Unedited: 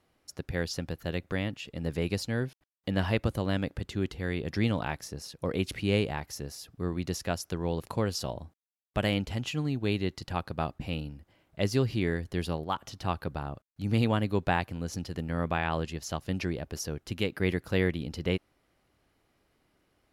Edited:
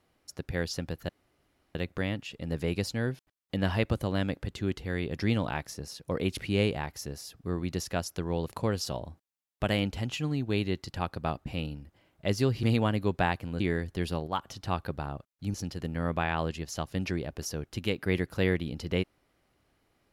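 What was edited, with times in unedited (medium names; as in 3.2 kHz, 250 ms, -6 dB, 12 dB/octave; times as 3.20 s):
1.09 s: insert room tone 0.66 s
13.91–14.88 s: move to 11.97 s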